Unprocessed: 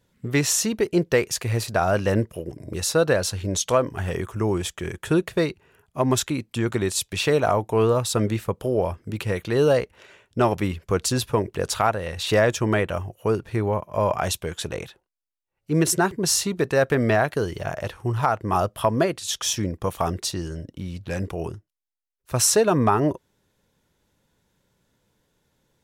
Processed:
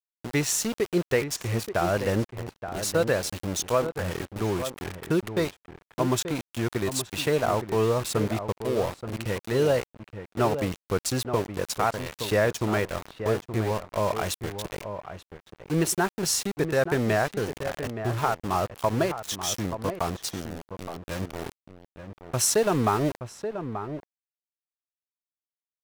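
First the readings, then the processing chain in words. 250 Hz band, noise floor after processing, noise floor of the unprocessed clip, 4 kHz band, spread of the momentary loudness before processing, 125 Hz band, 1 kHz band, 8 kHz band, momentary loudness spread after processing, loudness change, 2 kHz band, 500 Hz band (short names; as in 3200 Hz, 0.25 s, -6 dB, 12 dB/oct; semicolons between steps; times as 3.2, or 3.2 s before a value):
-4.0 dB, under -85 dBFS, -75 dBFS, -4.5 dB, 11 LU, -4.5 dB, -3.5 dB, -4.5 dB, 12 LU, -4.0 dB, -3.5 dB, -3.5 dB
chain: sample gate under -26.5 dBFS; outdoor echo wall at 150 m, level -9 dB; vibrato 0.46 Hz 23 cents; gain -4 dB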